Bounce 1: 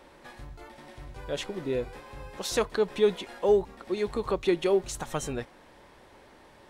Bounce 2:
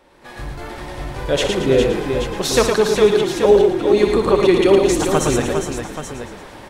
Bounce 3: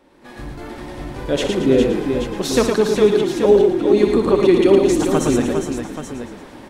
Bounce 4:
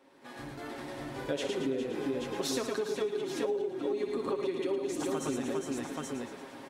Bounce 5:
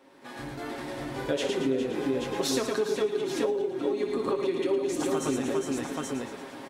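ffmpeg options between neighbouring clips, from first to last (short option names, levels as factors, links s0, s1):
-filter_complex "[0:a]asplit=2[s0][s1];[s1]asplit=6[s2][s3][s4][s5][s6][s7];[s2]adelay=113,afreqshift=-39,volume=0.316[s8];[s3]adelay=226,afreqshift=-78,volume=0.178[s9];[s4]adelay=339,afreqshift=-117,volume=0.0989[s10];[s5]adelay=452,afreqshift=-156,volume=0.0556[s11];[s6]adelay=565,afreqshift=-195,volume=0.0313[s12];[s7]adelay=678,afreqshift=-234,volume=0.0174[s13];[s8][s9][s10][s11][s12][s13]amix=inputs=6:normalize=0[s14];[s0][s14]amix=inputs=2:normalize=0,dynaudnorm=f=200:g=3:m=5.62,asplit=2[s15][s16];[s16]aecho=0:1:61|111|407|830:0.316|0.531|0.473|0.316[s17];[s15][s17]amix=inputs=2:normalize=0,volume=0.891"
-af "equalizer=f=260:t=o:w=1:g=9.5,volume=0.631"
-af "highpass=f=290:p=1,aecho=1:1:7.4:0.52,acompressor=threshold=0.0794:ratio=12,volume=0.447"
-filter_complex "[0:a]asplit=2[s0][s1];[s1]adelay=23,volume=0.251[s2];[s0][s2]amix=inputs=2:normalize=0,volume=1.68"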